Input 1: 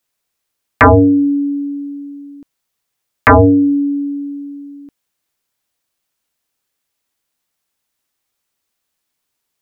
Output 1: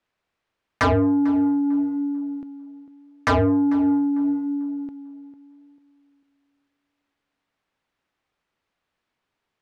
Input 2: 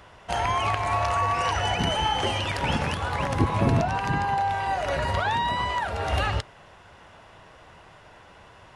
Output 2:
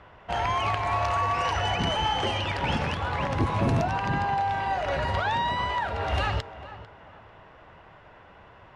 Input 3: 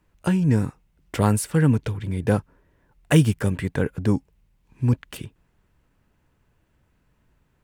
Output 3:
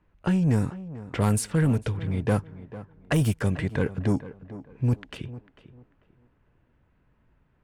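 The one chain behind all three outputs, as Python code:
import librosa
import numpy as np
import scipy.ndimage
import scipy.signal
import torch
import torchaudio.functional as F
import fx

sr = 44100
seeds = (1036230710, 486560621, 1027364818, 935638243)

p1 = fx.env_lowpass(x, sr, base_hz=2400.0, full_db=-13.0)
p2 = fx.high_shelf(p1, sr, hz=11000.0, db=10.0)
p3 = fx.over_compress(p2, sr, threshold_db=-17.0, ratio=-0.5)
p4 = p2 + F.gain(torch.from_numpy(p3), 0.5).numpy()
p5 = fx.quant_float(p4, sr, bits=8)
p6 = 10.0 ** (-8.5 / 20.0) * np.tanh(p5 / 10.0 ** (-8.5 / 20.0))
p7 = p6 + fx.echo_tape(p6, sr, ms=446, feedback_pct=34, wet_db=-12.0, lp_hz=1500.0, drive_db=11.0, wow_cents=26, dry=0)
y = F.gain(torch.from_numpy(p7), -7.0).numpy()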